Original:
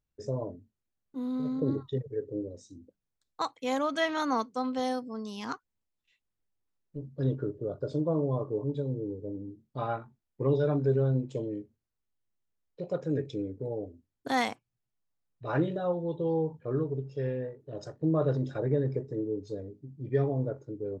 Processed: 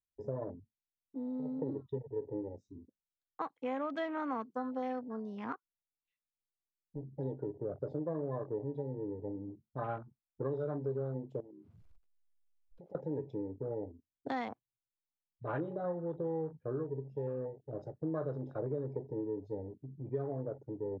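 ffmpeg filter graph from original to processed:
-filter_complex "[0:a]asettb=1/sr,asplit=3[a][b][c];[a]atrim=end=11.404[d];[b]atrim=start=11.4:end=12.95,asetpts=PTS-STARTPTS,afade=t=in:d=0.004:c=qsin,afade=t=out:st=1.546:d=0.004:c=qsin,aeval=exprs='val(0)+0.5*0.00398*sgn(val(0))':c=same,bandreject=f=1.8k:w=8.8,acompressor=threshold=-48dB:ratio=10:attack=3.2:release=140:knee=1:detection=peak[e];[c]atrim=start=12.946[f];[d][e]acrossfade=d=0.004:c1=hsin:c2=qsin[g];[g][f]acrossfade=d=0.004:c1=qsin:c2=hsin,afwtdn=0.00794,aemphasis=mode=reproduction:type=75fm,acrossover=split=380|1800[h][i][j];[h]acompressor=threshold=-39dB:ratio=4[k];[i]acompressor=threshold=-35dB:ratio=4[l];[j]acompressor=threshold=-49dB:ratio=4[m];[k][l][m]amix=inputs=3:normalize=0,volume=-2dB"

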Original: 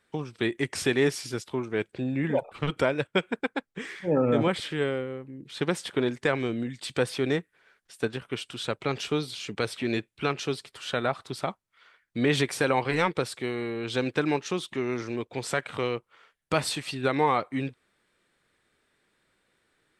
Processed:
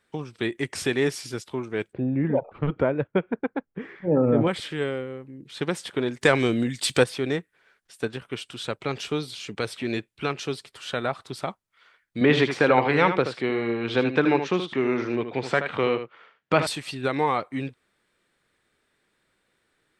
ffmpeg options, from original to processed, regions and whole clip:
-filter_complex "[0:a]asettb=1/sr,asplit=3[a][b][c];[a]atrim=end=1.934[d];[b]atrim=start=1.93:end=4.47,asetpts=PTS-STARTPTS,afade=t=in:d=0.004:c=qsin,afade=t=out:st=2.536:d=0.004:c=qsin,lowpass=2k,tiltshelf=f=940:g=4.5[e];[c]atrim=start=4.466[f];[d][e]acrossfade=d=0.004:c1=hsin:c2=qsin[g];[g][f]acrossfade=d=0.004:c1=qsin:c2=hsin,asettb=1/sr,asplit=3[h][i][j];[h]atrim=end=6.214[k];[i]atrim=start=6.21:end=7.04,asetpts=PTS-STARTPTS,afade=t=in:d=0.004:c=qsin,afade=t=out:st=0.826:d=0.004:c=qsin,highshelf=f=4.4k:g=8.5,acontrast=68[l];[j]atrim=start=7.036[m];[k][l]acrossfade=d=0.004:c1=hsin:c2=qsin[n];[n][m]acrossfade=d=0.004:c1=qsin:c2=hsin,asettb=1/sr,asplit=3[o][p][q];[o]atrim=end=12.214[r];[p]atrim=start=12.21:end=16.67,asetpts=PTS-STARTPTS,afade=t=in:d=0.004:c=qsin,afade=t=out:st=4.456:d=0.004:c=qsin,acontrast=39,highpass=130,lowpass=3.2k,aecho=1:1:77:0.355,atrim=end_sample=196686[s];[q]atrim=start=16.666[t];[r][s]acrossfade=d=0.004:c1=hsin:c2=qsin[u];[u][t]acrossfade=d=0.004:c1=qsin:c2=hsin"

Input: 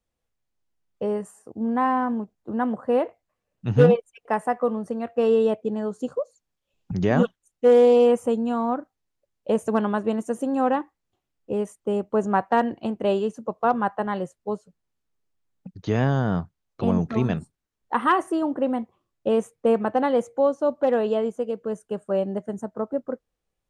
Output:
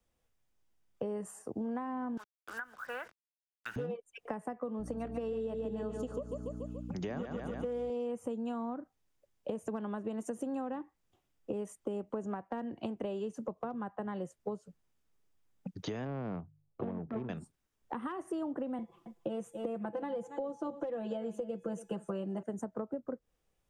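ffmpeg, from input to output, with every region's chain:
-filter_complex "[0:a]asettb=1/sr,asplit=3[a][b][c];[a]atrim=end=2.174[d];[b]atrim=start=2.17:end=3.76,asetpts=PTS-STARTPTS,afade=t=in:d=0.004:c=qsin,afade=t=out:st=1.586:d=0.004:c=qsin,highpass=f=1.5k:t=q:w=8.5,acrusher=bits=7:mix=0:aa=0.5[e];[c]atrim=start=3.756[f];[d][e]acrossfade=d=0.004:c1=hsin:c2=qsin[g];[g][f]acrossfade=d=0.004:c1=qsin:c2=hsin,asettb=1/sr,asplit=3[h][i][j];[h]atrim=end=4.794[k];[i]atrim=start=4.79:end=7.9,asetpts=PTS-STARTPTS,afade=t=in:d=0.004:c=qsin,afade=t=out:st=3.106:d=0.004:c=qsin,aecho=1:1:143|286|429|572|715|858:0.398|0.207|0.108|0.056|0.0291|0.0151,atrim=end_sample=137151,aeval=exprs='val(0)+0.02*(sin(2*PI*60*n/s)+sin(2*PI*2*60*n/s)/2+sin(2*PI*3*60*n/s)/3+sin(2*PI*4*60*n/s)/4+sin(2*PI*5*60*n/s)/5)':c=same[l];[j]atrim=start=7.896[m];[k][l]acrossfade=d=0.004:c1=hsin:c2=qsin[n];[n][m]acrossfade=d=0.004:c1=qsin:c2=hsin,asettb=1/sr,asplit=3[o][p][q];[o]atrim=end=16.054[r];[p]atrim=start=16.05:end=17.29,asetpts=PTS-STARTPTS,afade=t=in:d=0.004:c=qsin,afade=t=out:st=1.236:d=0.004:c=qsin,bandreject=f=50:t=h:w=6,bandreject=f=100:t=h:w=6,bandreject=f=150:t=h:w=6,adynamicsmooth=sensitivity=0.5:basefreq=600[s];[q]atrim=start=17.286[t];[r][s]acrossfade=d=0.004:c1=hsin:c2=qsin[u];[u][t]acrossfade=d=0.004:c1=qsin:c2=hsin,asettb=1/sr,asplit=3[v][w][x];[v]atrim=end=18.784[y];[w]atrim=start=18.78:end=22.43,asetpts=PTS-STARTPTS,afade=t=in:d=0.004:c=qsin,afade=t=out:st=3.646:d=0.004:c=qsin,aecho=1:1:5.9:0.97,atrim=end_sample=160965,bandreject=f=423.9:t=h:w=4,bandreject=f=847.8:t=h:w=4,bandreject=f=1.2717k:t=h:w=4,bandreject=f=1.6956k:t=h:w=4,bandreject=f=2.1195k:t=h:w=4,bandreject=f=2.5434k:t=h:w=4,bandreject=f=2.9673k:t=h:w=4,bandreject=f=3.3912k:t=h:w=4,bandreject=f=3.8151k:t=h:w=4,bandreject=f=4.239k:t=h:w=4,bandreject=f=4.6629k:t=h:w=4,bandreject=f=5.0868k:t=h:w=4,bandreject=f=5.5107k:t=h:w=4,bandreject=f=5.9346k:t=h:w=4,bandreject=f=6.3585k:t=h:w=4,bandreject=f=6.7824k:t=h:w=4,bandreject=f=7.2063k:t=h:w=4,bandreject=f=7.6302k:t=h:w=4,bandreject=f=8.0541k:t=h:w=4,bandreject=f=8.478k:t=h:w=4,bandreject=f=8.9019k:t=h:w=4,bandreject=f=9.3258k:t=h:w=4,bandreject=f=9.7497k:t=h:w=4,bandreject=f=10.1736k:t=h:w=4,bandreject=f=10.5975k:t=h:w=4,bandreject=f=11.0214k:t=h:w=4,bandreject=f=11.4453k:t=h:w=4,bandreject=f=11.8692k:t=h:w=4,bandreject=f=12.2931k:t=h:w=4,bandreject=f=12.717k:t=h:w=4,bandreject=f=13.1409k:t=h:w=4,bandreject=f=13.5648k:t=h:w=4,bandreject=f=13.9887k:t=h:w=4,bandreject=f=14.4126k:t=h:w=4,bandreject=f=14.8365k:t=h:w=4,aecho=1:1:278:0.106,atrim=end_sample=160965[z];[x]atrim=start=22.426[aa];[y][z]acrossfade=d=0.004:c1=hsin:c2=qsin[ab];[ab][aa]acrossfade=d=0.004:c1=qsin:c2=hsin,acompressor=threshold=-30dB:ratio=6,bandreject=f=4.2k:w=14,acrossover=split=180|390[ac][ad][ae];[ac]acompressor=threshold=-52dB:ratio=4[af];[ad]acompressor=threshold=-43dB:ratio=4[ag];[ae]acompressor=threshold=-44dB:ratio=4[ah];[af][ag][ah]amix=inputs=3:normalize=0,volume=2.5dB"

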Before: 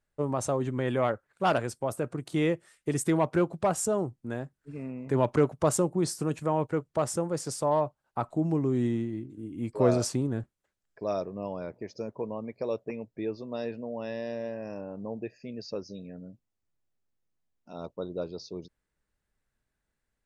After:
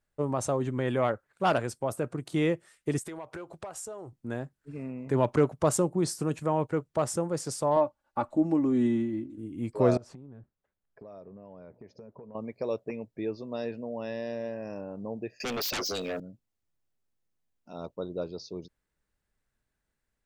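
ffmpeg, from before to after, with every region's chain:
-filter_complex "[0:a]asettb=1/sr,asplit=3[a][b][c];[a]atrim=end=2.984[d];[b]atrim=start=2.98:end=4.13,asetpts=PTS-STARTPTS,afade=t=in:d=0.004:c=qsin,afade=t=out:st=1.146:d=0.004:c=qsin,equalizer=f=190:t=o:w=1.3:g=-13,acompressor=threshold=-36dB:ratio=10:attack=3.2:release=140:knee=1:detection=peak[e];[c]atrim=start=4.126[f];[d][e]acrossfade=d=0.004:c1=hsin:c2=qsin[g];[g][f]acrossfade=d=0.004:c1=qsin:c2=hsin,asettb=1/sr,asplit=3[h][i][j];[h]atrim=end=7.764[k];[i]atrim=start=7.76:end=9.38,asetpts=PTS-STARTPTS,afade=t=in:d=0.004:c=qsin,afade=t=out:st=1.616:d=0.004:c=qsin,highshelf=f=5.3k:g=-5.5,aecho=1:1:3.5:0.72,atrim=end_sample=71442[l];[j]atrim=start=9.376[m];[k][l]acrossfade=d=0.004:c1=hsin:c2=qsin[n];[n][m]acrossfade=d=0.004:c1=qsin:c2=hsin,asettb=1/sr,asplit=3[o][p][q];[o]atrim=end=9.974[r];[p]atrim=start=9.97:end=12.35,asetpts=PTS-STARTPTS,afade=t=in:d=0.004:c=qsin,afade=t=out:st=2.376:d=0.004:c=qsin,lowpass=f=1.2k:p=1,bandreject=f=330:w=7.4,acompressor=threshold=-43dB:ratio=10:attack=3.2:release=140:knee=1:detection=peak[s];[q]atrim=start=12.346[t];[r][s]acrossfade=d=0.004:c1=hsin:c2=qsin[u];[u][t]acrossfade=d=0.004:c1=qsin:c2=hsin,asettb=1/sr,asplit=3[v][w][x];[v]atrim=end=15.404[y];[w]atrim=start=15.4:end=16.2,asetpts=PTS-STARTPTS,afade=t=in:d=0.004:c=qsin,afade=t=out:st=0.796:d=0.004:c=qsin,highpass=610,aeval=exprs='0.0376*sin(PI/2*10*val(0)/0.0376)':c=same[z];[x]atrim=start=16.196[aa];[y][z]acrossfade=d=0.004:c1=hsin:c2=qsin[ab];[ab][aa]acrossfade=d=0.004:c1=qsin:c2=hsin"

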